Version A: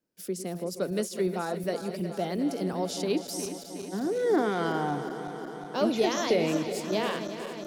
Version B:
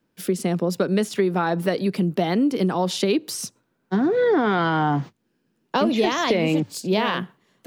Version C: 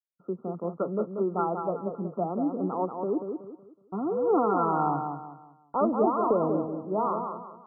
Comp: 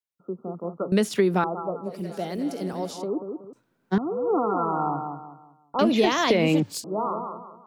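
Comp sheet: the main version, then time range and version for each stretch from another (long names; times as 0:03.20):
C
0:00.92–0:01.44: punch in from B
0:01.95–0:02.97: punch in from A, crossfade 0.24 s
0:03.53–0:03.98: punch in from B
0:05.79–0:06.84: punch in from B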